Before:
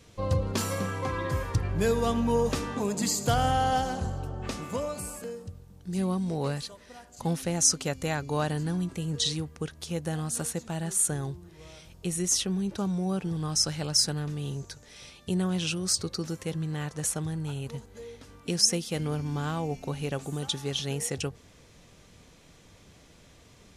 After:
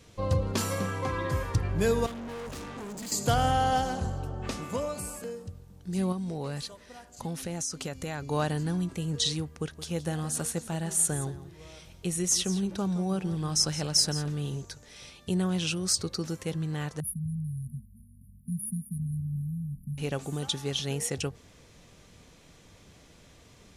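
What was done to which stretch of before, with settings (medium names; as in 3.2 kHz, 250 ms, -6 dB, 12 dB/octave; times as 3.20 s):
2.06–3.12 s: valve stage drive 37 dB, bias 0.65
6.12–8.22 s: compression, threshold -30 dBFS
9.59–14.62 s: delay 169 ms -14 dB
17.00–19.98 s: brick-wall FIR band-stop 240–9500 Hz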